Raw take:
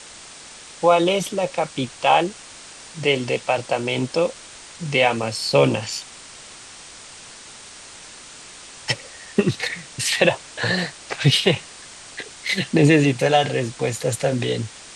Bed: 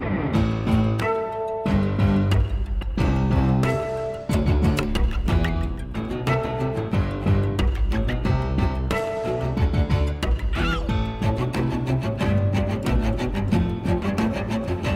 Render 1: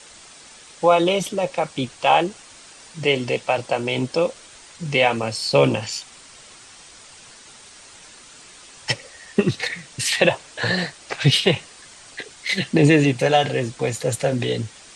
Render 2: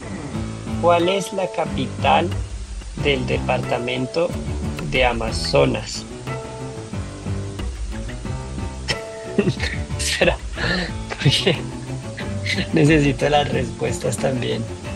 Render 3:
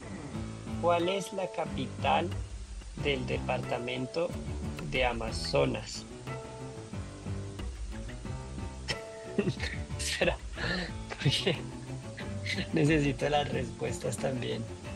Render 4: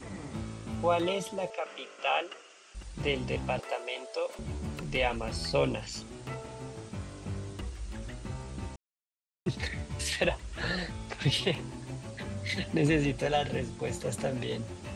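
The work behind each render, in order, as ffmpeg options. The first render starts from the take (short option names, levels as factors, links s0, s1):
-af "afftdn=nr=6:nf=-42"
-filter_complex "[1:a]volume=0.501[s0];[0:a][s0]amix=inputs=2:normalize=0"
-af "volume=0.266"
-filter_complex "[0:a]asettb=1/sr,asplit=3[s0][s1][s2];[s0]atrim=end=1.504[s3];[s1]atrim=start=1.5:end=2.75,asetpts=PTS-STARTPTS,afade=t=in:d=0.004:c=qsin,afade=t=out:st=1.246:d=0.004:c=qsin,highpass=f=430:w=0.5412,highpass=f=430:w=1.3066,equalizer=f=930:t=q:w=4:g=-8,equalizer=f=1300:t=q:w=4:g=6,equalizer=f=2800:t=q:w=4:g=6,equalizer=f=4000:t=q:w=4:g=-8,lowpass=f=7400:w=0.5412,lowpass=f=7400:w=1.3066[s4];[s2]atrim=start=2.746[s5];[s3][s4]acrossfade=d=0.004:c1=hsin:c2=qsin[s6];[s6][s5]acrossfade=d=0.004:c1=qsin:c2=hsin,asettb=1/sr,asplit=3[s7][s8][s9];[s7]atrim=end=3.594[s10];[s8]atrim=start=3.59:end=4.39,asetpts=PTS-STARTPTS,afade=t=in:d=0.004:c=qsin,afade=t=out:st=0.796:d=0.004:c=qsin,highpass=f=440:w=0.5412,highpass=f=440:w=1.3066[s11];[s9]atrim=start=4.386[s12];[s10][s11]acrossfade=d=0.004:c1=hsin:c2=qsin[s13];[s13][s12]acrossfade=d=0.004:c1=qsin:c2=hsin,asplit=3[s14][s15][s16];[s14]atrim=end=8.76,asetpts=PTS-STARTPTS,afade=t=out:st=8.756:d=0.004:c=hsin[s17];[s15]atrim=start=8.76:end=9.46,asetpts=PTS-STARTPTS,volume=0[s18];[s16]atrim=start=9.46,asetpts=PTS-STARTPTS,afade=t=in:d=0.004:c=hsin[s19];[s17][s18][s19]concat=n=3:v=0:a=1"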